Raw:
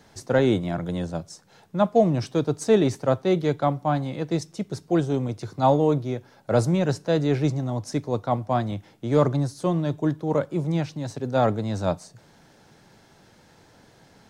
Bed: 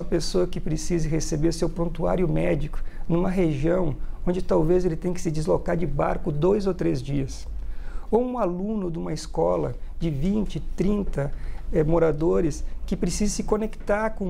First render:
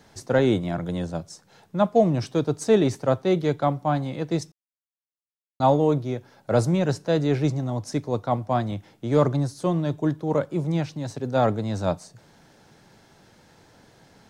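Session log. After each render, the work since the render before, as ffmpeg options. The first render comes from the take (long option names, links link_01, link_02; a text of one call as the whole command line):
ffmpeg -i in.wav -filter_complex "[0:a]asplit=3[link_01][link_02][link_03];[link_01]atrim=end=4.52,asetpts=PTS-STARTPTS,afade=type=out:start_time=4.516:duration=0.004:curve=hsin[link_04];[link_02]atrim=start=4.52:end=5.6,asetpts=PTS-STARTPTS,volume=0[link_05];[link_03]atrim=start=5.6,asetpts=PTS-STARTPTS,afade=type=in:duration=0.004:curve=hsin[link_06];[link_04][link_05][link_06]concat=n=3:v=0:a=1" out.wav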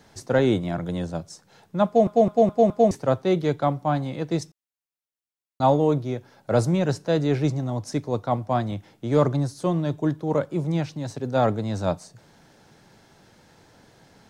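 ffmpeg -i in.wav -filter_complex "[0:a]asplit=6[link_01][link_02][link_03][link_04][link_05][link_06];[link_01]atrim=end=2.072[link_07];[link_02]atrim=start=1.858:end=2.072[link_08];[link_03]atrim=start=1.858:end=2.072[link_09];[link_04]atrim=start=1.858:end=2.072[link_10];[link_05]atrim=start=1.858:end=2.072[link_11];[link_06]atrim=start=2.908[link_12];[link_07][link_08]acrossfade=duration=0.004:curve1=hsin:curve2=hsin[link_13];[link_13][link_09]acrossfade=duration=0.004:curve1=hsin:curve2=hsin[link_14];[link_14][link_10]acrossfade=duration=0.004:curve1=hsin:curve2=hsin[link_15];[link_15][link_11]acrossfade=duration=0.004:curve1=hsin:curve2=hsin[link_16];[link_16][link_12]acrossfade=duration=0.004:curve1=hsin:curve2=hsin" out.wav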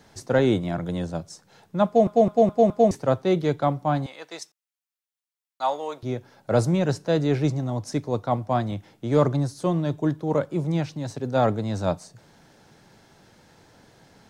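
ffmpeg -i in.wav -filter_complex "[0:a]asettb=1/sr,asplit=3[link_01][link_02][link_03];[link_01]atrim=end=4.064[link_04];[link_02]atrim=start=4.06:end=6.03,asetpts=PTS-STARTPTS,afade=type=in:duration=0.004:curve=qsin,afade=type=out:start_time=1.966:duration=0.004:curve=qsin,highpass=880[link_05];[link_03]atrim=start=6.026[link_06];[link_04][link_05]acrossfade=duration=0.004:curve1=hsin:curve2=qsin[link_07];[link_07][link_06]acrossfade=duration=0.004:curve1=qsin:curve2=hsin" out.wav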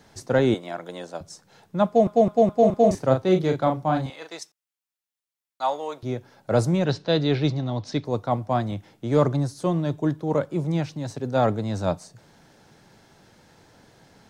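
ffmpeg -i in.wav -filter_complex "[0:a]asettb=1/sr,asplit=3[link_01][link_02][link_03];[link_01]atrim=end=0.544[link_04];[link_02]atrim=start=0.54:end=1.21,asetpts=PTS-STARTPTS,afade=type=in:duration=0.004:curve=qsin,afade=type=out:start_time=0.666:duration=0.004:curve=qsin,highpass=440[link_05];[link_03]atrim=start=1.206[link_06];[link_04][link_05]acrossfade=duration=0.004:curve1=hsin:curve2=qsin[link_07];[link_07][link_06]acrossfade=duration=0.004:curve1=qsin:curve2=hsin,asettb=1/sr,asplit=3[link_08][link_09][link_10];[link_08]atrim=end=2.594[link_11];[link_09]atrim=start=2.59:end=4.34,asetpts=PTS-STARTPTS,afade=type=in:duration=0.004:curve=qsin,afade=type=out:start_time=1.746:duration=0.004:curve=qsin,asplit=2[link_12][link_13];[link_13]adelay=38,volume=-5.5dB[link_14];[link_12][link_14]amix=inputs=2:normalize=0,atrim=end_sample=77175[link_15];[link_10]atrim=start=4.336[link_16];[link_11][link_15]acrossfade=duration=0.004:curve1=hsin:curve2=qsin[link_17];[link_17][link_16]acrossfade=duration=0.004:curve1=qsin:curve2=hsin,asettb=1/sr,asplit=3[link_18][link_19][link_20];[link_18]atrim=end=6.854[link_21];[link_19]atrim=start=6.85:end=8.05,asetpts=PTS-STARTPTS,afade=type=in:duration=0.004:curve=qsin,afade=type=out:start_time=1.196:duration=0.004:curve=qsin,lowpass=frequency=3900:width_type=q:width=2.9[link_22];[link_20]atrim=start=8.046[link_23];[link_21][link_22]acrossfade=duration=0.004:curve1=hsin:curve2=qsin[link_24];[link_24][link_23]acrossfade=duration=0.004:curve1=qsin:curve2=hsin" out.wav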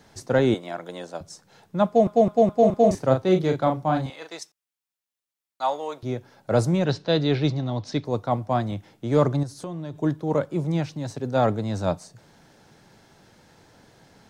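ffmpeg -i in.wav -filter_complex "[0:a]asettb=1/sr,asplit=3[link_01][link_02][link_03];[link_01]atrim=end=9.434[link_04];[link_02]atrim=start=9.43:end=9.96,asetpts=PTS-STARTPTS,afade=type=in:duration=0.004:curve=qsin,afade=type=out:start_time=0.526:duration=0.004:curve=qsin,acompressor=threshold=-30dB:ratio=5:attack=3.2:release=140:knee=1:detection=peak[link_05];[link_03]atrim=start=9.956[link_06];[link_04][link_05]acrossfade=duration=0.004:curve1=hsin:curve2=qsin[link_07];[link_07][link_06]acrossfade=duration=0.004:curve1=qsin:curve2=hsin" out.wav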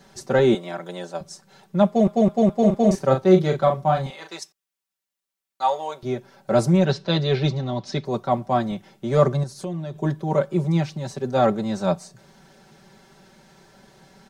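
ffmpeg -i in.wav -af "aecho=1:1:5.2:0.89" out.wav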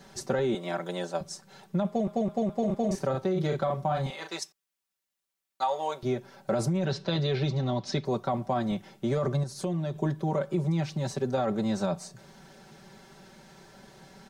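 ffmpeg -i in.wav -af "alimiter=limit=-15dB:level=0:latency=1:release=15,acompressor=threshold=-24dB:ratio=6" out.wav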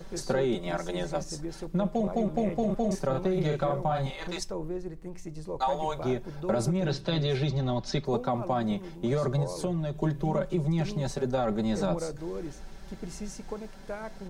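ffmpeg -i in.wav -i bed.wav -filter_complex "[1:a]volume=-14.5dB[link_01];[0:a][link_01]amix=inputs=2:normalize=0" out.wav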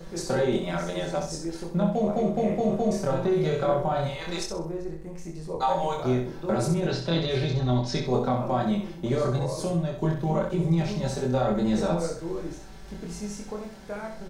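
ffmpeg -i in.wav -filter_complex "[0:a]asplit=2[link_01][link_02];[link_02]adelay=24,volume=-2dB[link_03];[link_01][link_03]amix=inputs=2:normalize=0,aecho=1:1:64|128|192|256:0.473|0.142|0.0426|0.0128" out.wav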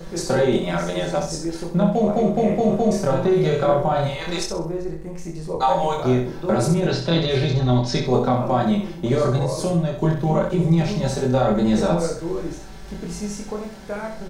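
ffmpeg -i in.wav -af "volume=6dB" out.wav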